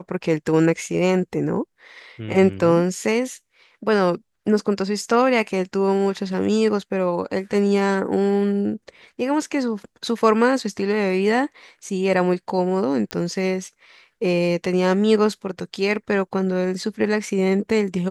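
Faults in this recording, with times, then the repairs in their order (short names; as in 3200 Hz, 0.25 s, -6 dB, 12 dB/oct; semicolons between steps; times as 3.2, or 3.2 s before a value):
13.11 pop -10 dBFS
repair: de-click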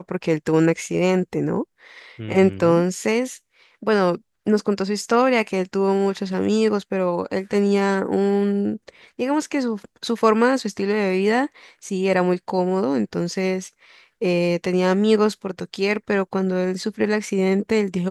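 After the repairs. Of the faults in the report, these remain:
none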